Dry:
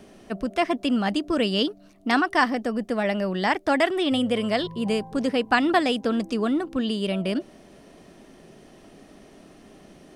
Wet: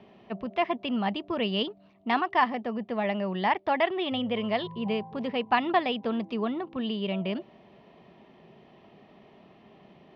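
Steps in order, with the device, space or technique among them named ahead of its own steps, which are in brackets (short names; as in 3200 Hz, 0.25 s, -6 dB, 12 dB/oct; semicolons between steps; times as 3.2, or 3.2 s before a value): guitar cabinet (speaker cabinet 96–3400 Hz, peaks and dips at 290 Hz -10 dB, 520 Hz -4 dB, 930 Hz +5 dB, 1500 Hz -9 dB); gain -2.5 dB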